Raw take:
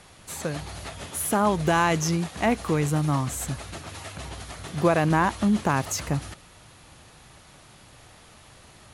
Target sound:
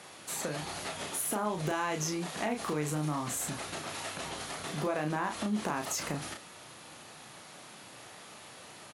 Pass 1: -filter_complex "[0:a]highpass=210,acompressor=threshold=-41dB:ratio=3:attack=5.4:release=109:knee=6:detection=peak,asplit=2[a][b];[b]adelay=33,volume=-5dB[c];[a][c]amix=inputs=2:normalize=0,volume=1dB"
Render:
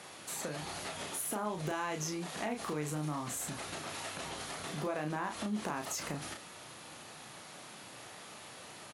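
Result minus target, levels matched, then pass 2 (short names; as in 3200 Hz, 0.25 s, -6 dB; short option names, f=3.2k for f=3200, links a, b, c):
compressor: peak gain reduction +4 dB
-filter_complex "[0:a]highpass=210,acompressor=threshold=-35dB:ratio=3:attack=5.4:release=109:knee=6:detection=peak,asplit=2[a][b];[b]adelay=33,volume=-5dB[c];[a][c]amix=inputs=2:normalize=0,volume=1dB"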